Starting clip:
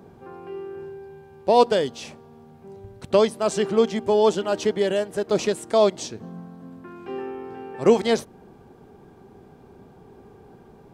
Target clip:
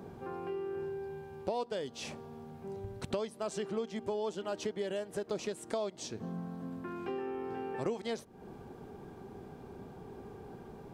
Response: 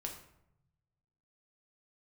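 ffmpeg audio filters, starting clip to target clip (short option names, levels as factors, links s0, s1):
-af "acompressor=threshold=0.0178:ratio=5"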